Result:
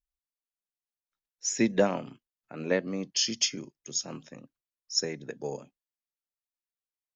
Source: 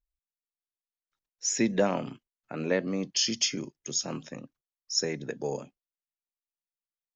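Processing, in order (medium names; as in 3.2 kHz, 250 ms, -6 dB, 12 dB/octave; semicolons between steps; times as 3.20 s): upward expansion 1.5:1, over -36 dBFS; trim +2 dB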